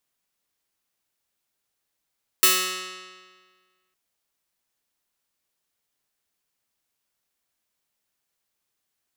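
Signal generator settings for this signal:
Karplus-Strong string F#3, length 1.51 s, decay 1.64 s, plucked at 0.23, bright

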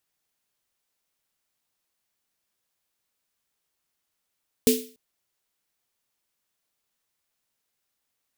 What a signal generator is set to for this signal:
synth snare length 0.29 s, tones 250 Hz, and 440 Hz, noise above 2,500 Hz, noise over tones −5 dB, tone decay 0.36 s, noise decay 0.39 s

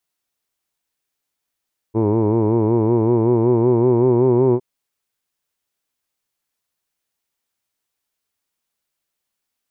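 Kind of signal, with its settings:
vowel from formants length 2.66 s, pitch 107 Hz, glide +3 semitones, F1 380 Hz, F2 950 Hz, F3 2,300 Hz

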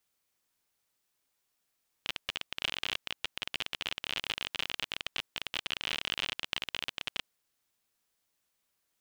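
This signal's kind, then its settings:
Geiger counter clicks 37 per second −16 dBFS 5.20 s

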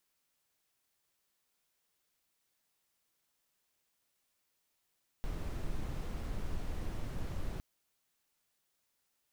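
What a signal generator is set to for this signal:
noise brown, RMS −36.5 dBFS 2.36 s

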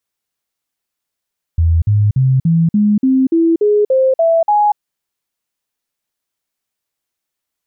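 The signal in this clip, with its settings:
stepped sweep 82.7 Hz up, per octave 3, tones 11, 0.24 s, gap 0.05 s −8.5 dBFS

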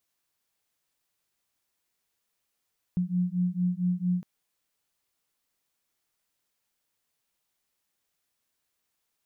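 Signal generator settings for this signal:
two tones that beat 177 Hz, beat 4.4 Hz, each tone −27.5 dBFS 1.26 s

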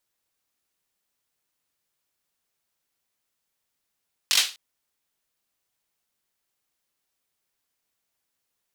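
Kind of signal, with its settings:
synth clap length 0.25 s, apart 21 ms, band 3,600 Hz, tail 0.31 s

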